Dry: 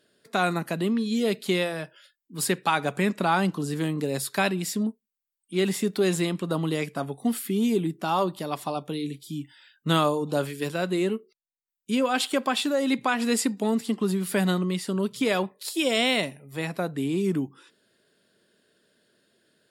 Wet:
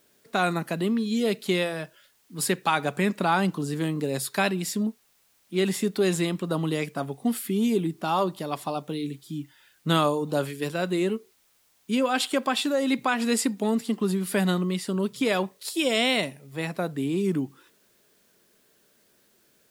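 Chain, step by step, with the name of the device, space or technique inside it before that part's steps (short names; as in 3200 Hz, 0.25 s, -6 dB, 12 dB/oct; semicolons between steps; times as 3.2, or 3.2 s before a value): plain cassette with noise reduction switched in (mismatched tape noise reduction decoder only; wow and flutter 14 cents; white noise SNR 38 dB)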